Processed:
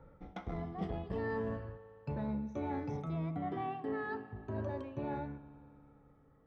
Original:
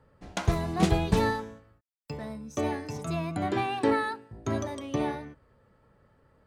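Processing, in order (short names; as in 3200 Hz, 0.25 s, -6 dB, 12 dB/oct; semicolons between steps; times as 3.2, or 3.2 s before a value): moving spectral ripple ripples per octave 1.4, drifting -0.34 Hz, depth 10 dB; Doppler pass-by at 1.72, 7 m/s, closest 4.7 m; reverse; compressor 10:1, threshold -46 dBFS, peak gain reduction 26 dB; reverse; tape spacing loss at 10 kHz 36 dB; spring tank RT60 2.9 s, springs 56 ms, chirp 30 ms, DRR 14.5 dB; core saturation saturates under 240 Hz; gain +13 dB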